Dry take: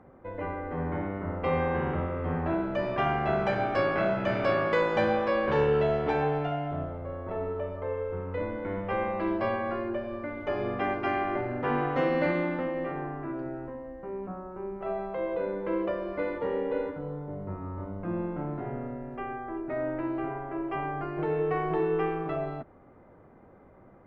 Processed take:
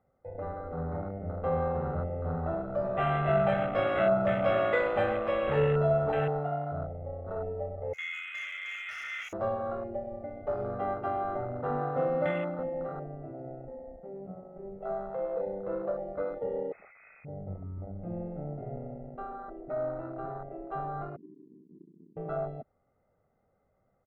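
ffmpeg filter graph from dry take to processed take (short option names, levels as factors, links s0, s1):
-filter_complex "[0:a]asettb=1/sr,asplit=3[s0][s1][s2];[s0]atrim=end=2.824[s3];[s1]atrim=start=2.82:end=6.28,asetpts=PTS-STARTPTS,afade=t=in:d=0.004:c=qsin,afade=t=out:st=3.456:d=0.004:c=qsin,asplit=2[s4][s5];[s5]adelay=21,volume=0.708[s6];[s4][s6]amix=inputs=2:normalize=0,atrim=end_sample=152586,aecho=1:1:124:0.316,atrim=end_sample=152586[s7];[s2]atrim=start=6.276[s8];[s3][s7]acrossfade=d=0.004:c1=hsin:c2=qsin[s9];[s9][s8]acrossfade=d=0.004:c1=qsin:c2=hsin,asettb=1/sr,asplit=3[s10][s11][s12];[s10]atrim=end=7.934[s13];[s11]atrim=start=7.93:end=9.33,asetpts=PTS-STARTPTS,afade=t=in:d=0.004:c=qsin,afade=t=out:st=1.396:d=0.004:c=qsin,lowpass=f=2200:t=q:w=0.5098,lowpass=f=2200:t=q:w=0.6013,lowpass=f=2200:t=q:w=0.9,lowpass=f=2200:t=q:w=2.563,afreqshift=-2600,aeval=exprs='0.0355*(abs(mod(val(0)/0.0355+3,4)-2)-1)':c=same[s14];[s12]atrim=start=9.326[s15];[s13][s14]acrossfade=d=0.004:c1=hsin:c2=qsin[s16];[s16][s15]acrossfade=d=0.004:c1=qsin:c2=hsin,asettb=1/sr,asplit=3[s17][s18][s19];[s17]atrim=end=16.724[s20];[s18]atrim=start=16.72:end=17.25,asetpts=PTS-STARTPTS,afade=t=in:d=0.004:c=qsin,afade=t=out:st=0.526:d=0.004:c=qsin,aeval=exprs='(mod(35.5*val(0)+1,2)-1)/35.5':c=same,lowpass=f=2200:t=q:w=0.5098,lowpass=f=2200:t=q:w=0.6013,lowpass=f=2200:t=q:w=0.9,lowpass=f=2200:t=q:w=2.563,afreqshift=-2600[s21];[s19]atrim=start=17.246[s22];[s20][s21]acrossfade=d=0.004:c1=hsin:c2=qsin[s23];[s23][s22]acrossfade=d=0.004:c1=qsin:c2=hsin,asettb=1/sr,asplit=3[s24][s25][s26];[s24]atrim=end=21.164[s27];[s25]atrim=start=21.16:end=22.17,asetpts=PTS-STARTPTS,afade=t=in:d=0.004:c=qsin,afade=t=out:st=1.006:d=0.004:c=qsin,asuperpass=centerf=240:order=12:qfactor=2.1,acontrast=41[s28];[s26]atrim=start=22.166[s29];[s27][s28]acrossfade=d=0.004:c1=hsin:c2=qsin[s30];[s30][s29]acrossfade=d=0.004:c1=qsin:c2=hsin,afwtdn=0.0282,equalizer=f=420:t=o:w=0.42:g=3,aecho=1:1:1.5:0.61,volume=0.631"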